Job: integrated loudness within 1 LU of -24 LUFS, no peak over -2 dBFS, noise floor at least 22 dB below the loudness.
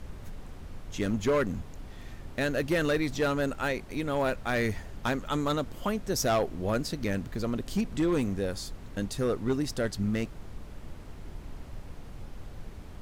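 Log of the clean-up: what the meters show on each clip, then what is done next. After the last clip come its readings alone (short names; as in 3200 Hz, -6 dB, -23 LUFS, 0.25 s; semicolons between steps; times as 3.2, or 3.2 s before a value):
clipped 0.9%; flat tops at -20.5 dBFS; noise floor -45 dBFS; noise floor target -53 dBFS; loudness -30.5 LUFS; peak -20.5 dBFS; loudness target -24.0 LUFS
-> clip repair -20.5 dBFS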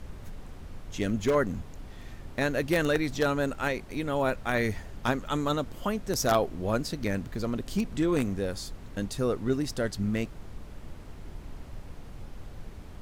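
clipped 0.0%; noise floor -45 dBFS; noise floor target -52 dBFS
-> noise print and reduce 7 dB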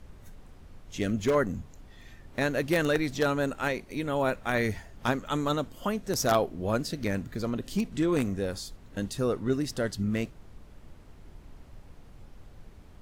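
noise floor -52 dBFS; loudness -29.5 LUFS; peak -11.5 dBFS; loudness target -24.0 LUFS
-> gain +5.5 dB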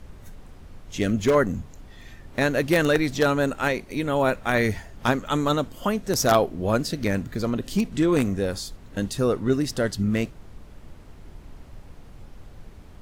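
loudness -24.0 LUFS; peak -6.0 dBFS; noise floor -46 dBFS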